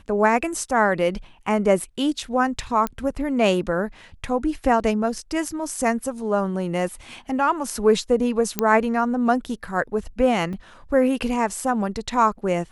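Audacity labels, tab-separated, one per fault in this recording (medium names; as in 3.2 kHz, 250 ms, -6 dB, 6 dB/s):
2.870000	2.870000	pop -11 dBFS
8.590000	8.590000	pop -5 dBFS
10.530000	10.530000	dropout 3.7 ms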